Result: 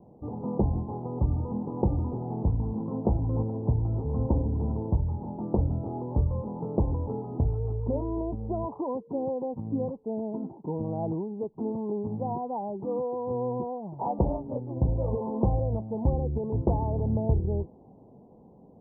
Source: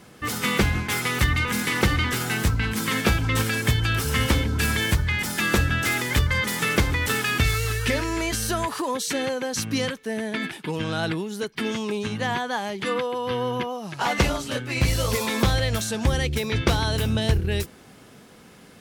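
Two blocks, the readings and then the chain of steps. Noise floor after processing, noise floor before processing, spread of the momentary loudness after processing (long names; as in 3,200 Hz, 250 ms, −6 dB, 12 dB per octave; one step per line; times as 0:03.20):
−53 dBFS, −49 dBFS, 6 LU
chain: Butterworth low-pass 940 Hz 72 dB per octave
level −3 dB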